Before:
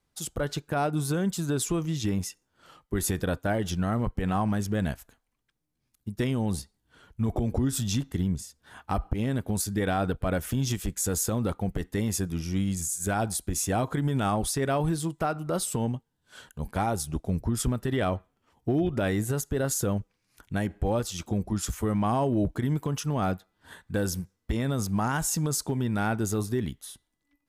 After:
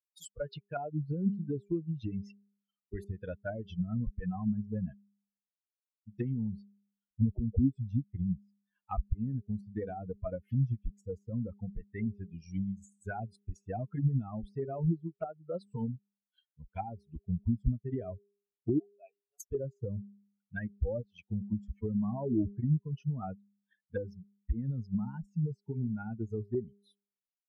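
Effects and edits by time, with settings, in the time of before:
11.41–12.22 air absorption 190 m
18.79–19.4 vowel filter a
whole clip: per-bin expansion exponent 3; de-hum 201.8 Hz, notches 2; treble ducked by the level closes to 370 Hz, closed at -33.5 dBFS; gain +4.5 dB

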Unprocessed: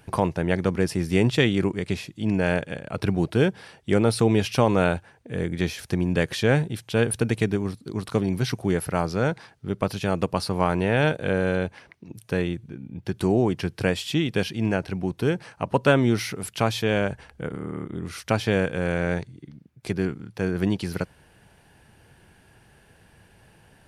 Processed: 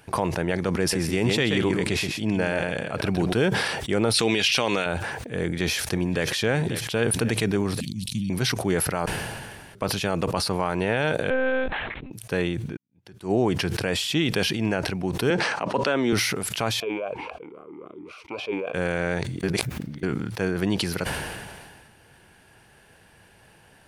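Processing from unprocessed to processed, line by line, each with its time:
0.8–3.33 echo 0.128 s -8.5 dB
4.14–4.86 weighting filter D
5.37–6.3 echo throw 0.54 s, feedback 40%, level -16.5 dB
7.8–8.3 elliptic band-stop 220–2800 Hz
9.06–9.75 room tone
11.3–12.11 monotone LPC vocoder at 8 kHz 260 Hz
12.77–13.32 fade in exponential
15.3–16.13 three-band isolator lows -22 dB, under 170 Hz, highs -21 dB, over 7800 Hz
16.8–18.74 vowel sweep a-u 3.7 Hz
19.43–20.03 reverse
whole clip: low shelf 300 Hz -7 dB; limiter -14.5 dBFS; sustainer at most 32 dB/s; gain +3 dB

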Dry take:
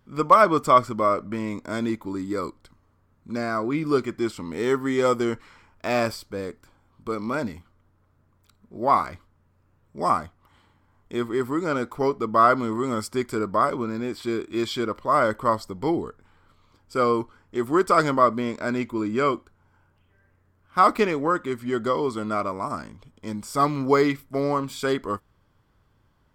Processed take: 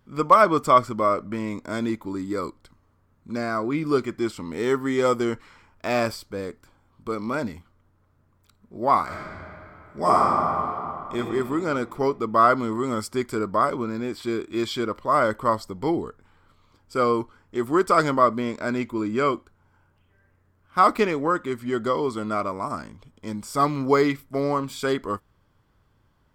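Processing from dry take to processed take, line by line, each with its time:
9.03–11.16 reverb throw, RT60 2.9 s, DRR -5 dB

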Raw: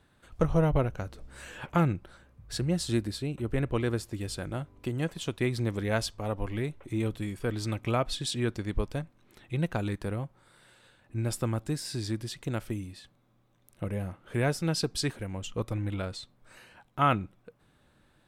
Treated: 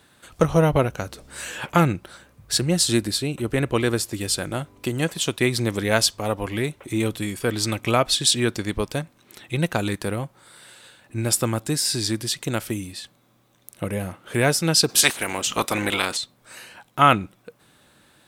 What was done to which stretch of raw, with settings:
14.88–16.16 spectral limiter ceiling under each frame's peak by 22 dB
whole clip: HPF 160 Hz 6 dB/oct; high shelf 3300 Hz +9.5 dB; gain +8.5 dB

